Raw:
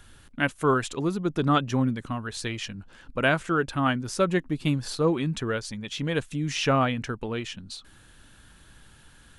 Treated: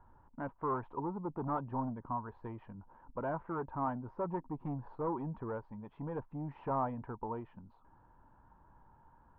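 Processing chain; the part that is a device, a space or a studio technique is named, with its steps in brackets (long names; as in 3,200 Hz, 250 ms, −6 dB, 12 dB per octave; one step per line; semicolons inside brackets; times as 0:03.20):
overdriven synthesiser ladder filter (soft clipping −23 dBFS, distortion −10 dB; transistor ladder low-pass 990 Hz, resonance 80%)
level +2 dB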